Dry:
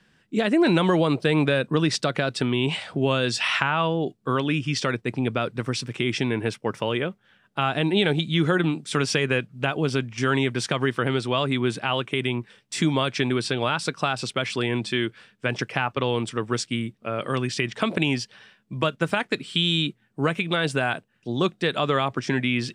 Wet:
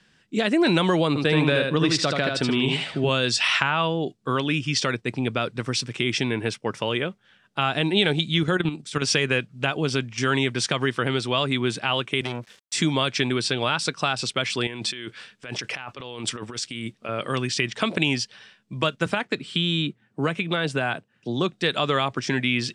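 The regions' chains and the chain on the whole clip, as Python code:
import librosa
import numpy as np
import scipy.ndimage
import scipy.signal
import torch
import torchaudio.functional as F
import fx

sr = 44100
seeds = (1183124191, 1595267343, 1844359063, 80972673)

y = fx.chain(x, sr, fx.high_shelf(hz=4900.0, db=-5.5),
    fx.echo_feedback(ms=77, feedback_pct=18, wet_db=-3.5), at=(1.08, 3.09))
y = fx.chain(y, sr, fx.low_shelf(hz=150.0, db=5.0),
    fx.level_steps(step_db=10), at=(8.38, 9.02))
y = fx.chain(y, sr, fx.highpass(hz=79.0, slope=24),
    fx.sample_gate(floor_db=-51.0),
    fx.transformer_sat(knee_hz=930.0), at=(12.21, 12.75))
y = fx.chain(y, sr, fx.low_shelf(hz=300.0, db=-6.0),
    fx.over_compress(threshold_db=-34.0, ratio=-1.0), at=(14.67, 17.09))
y = fx.chain(y, sr, fx.highpass(hz=43.0, slope=12),
    fx.high_shelf(hz=2700.0, db=-8.5),
    fx.band_squash(depth_pct=40), at=(19.06, 21.53))
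y = scipy.signal.sosfilt(scipy.signal.butter(2, 7700.0, 'lowpass', fs=sr, output='sos'), y)
y = fx.high_shelf(y, sr, hz=3200.0, db=9.0)
y = F.gain(torch.from_numpy(y), -1.0).numpy()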